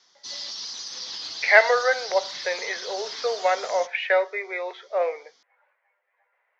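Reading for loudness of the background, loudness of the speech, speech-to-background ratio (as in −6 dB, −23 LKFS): −33.5 LKFS, −23.5 LKFS, 10.0 dB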